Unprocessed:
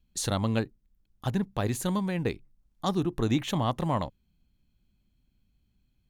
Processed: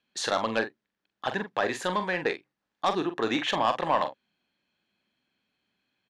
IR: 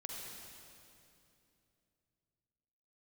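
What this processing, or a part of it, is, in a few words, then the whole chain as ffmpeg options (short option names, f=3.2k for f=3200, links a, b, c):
intercom: -filter_complex "[0:a]highpass=500,lowpass=3.9k,equalizer=f=1.7k:t=o:w=0.24:g=7,asoftclip=type=tanh:threshold=-22.5dB,asplit=2[a][b];[b]adelay=44,volume=-9dB[c];[a][c]amix=inputs=2:normalize=0,volume=8dB"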